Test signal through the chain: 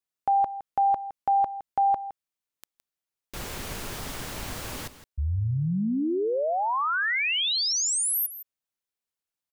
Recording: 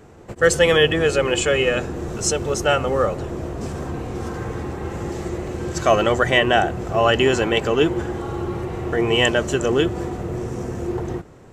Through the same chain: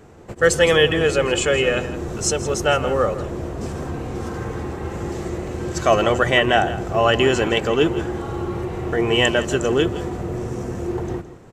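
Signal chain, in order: echo 0.164 s -14 dB

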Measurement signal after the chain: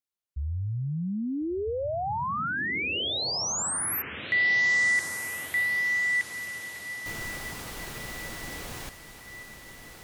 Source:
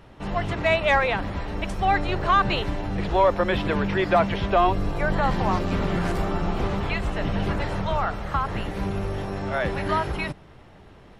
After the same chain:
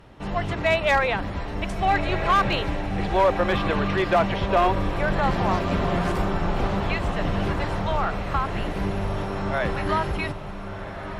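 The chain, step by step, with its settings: diffused feedback echo 1.418 s, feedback 53%, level -9.5 dB; one-sided clip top -14.5 dBFS, bottom -11.5 dBFS

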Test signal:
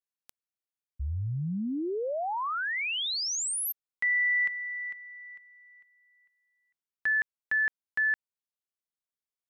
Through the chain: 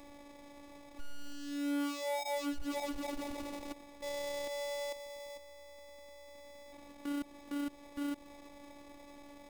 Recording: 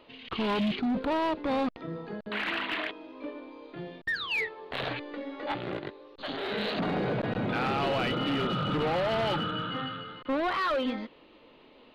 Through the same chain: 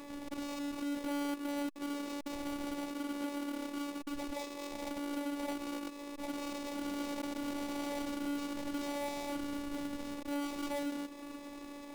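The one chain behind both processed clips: delta modulation 64 kbps, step -46 dBFS; bell 340 Hz +11.5 dB 0.84 oct; compressor 10:1, threshold -33 dBFS; limiter -31 dBFS; sample-and-hold 30×; dynamic EQ 1500 Hz, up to -4 dB, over -56 dBFS, Q 2; robotiser 286 Hz; Doppler distortion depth 0.21 ms; gain +2 dB

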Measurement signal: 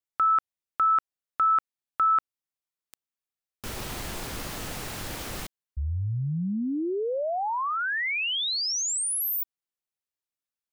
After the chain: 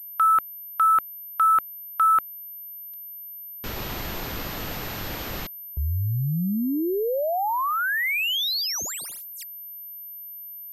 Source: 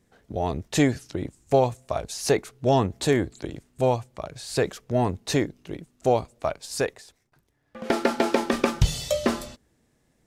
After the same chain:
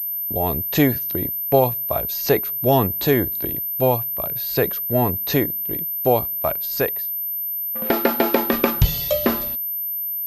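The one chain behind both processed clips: gate -45 dBFS, range -11 dB; pulse-width modulation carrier 13000 Hz; gain +3.5 dB

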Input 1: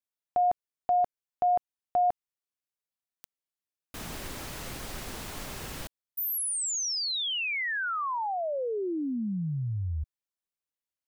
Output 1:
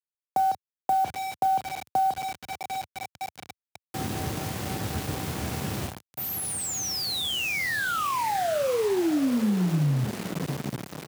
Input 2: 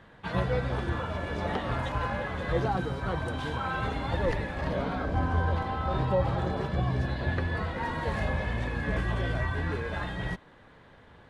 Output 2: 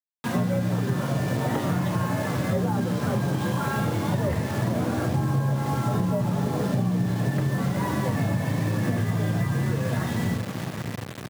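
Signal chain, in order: doubler 32 ms -11 dB; in parallel at -11 dB: one-sided clip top -28.5 dBFS; on the sum: notches 60/120/180 Hz; frequency shift +52 Hz; high shelf 5000 Hz -4.5 dB; on a send: diffused feedback echo 0.68 s, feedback 72%, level -13 dB; on the sum: requantised 6-bit, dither none; HPF 88 Hz 24 dB/oct; low shelf 390 Hz +11.5 dB; compressor, threshold -21 dBFS

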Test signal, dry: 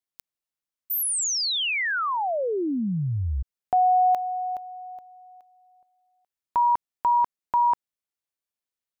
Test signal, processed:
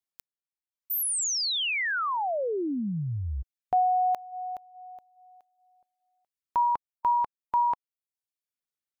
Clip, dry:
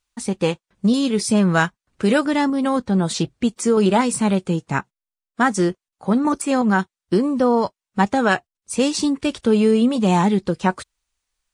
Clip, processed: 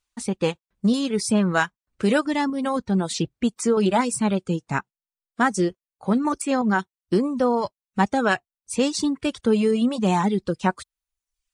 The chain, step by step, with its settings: reverb removal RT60 0.75 s; gain -2.5 dB

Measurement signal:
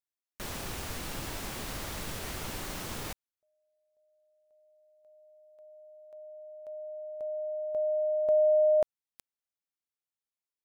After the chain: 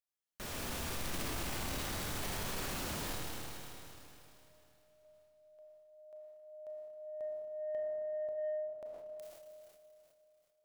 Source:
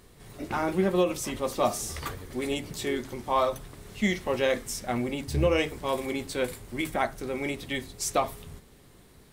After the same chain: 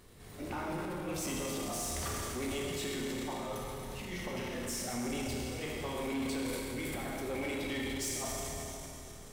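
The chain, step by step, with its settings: negative-ratio compressor -30 dBFS, ratio -0.5; Schroeder reverb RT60 3.1 s, combs from 26 ms, DRR -2 dB; soft clip -23 dBFS; transient shaper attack 0 dB, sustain +7 dB; gain -7.5 dB

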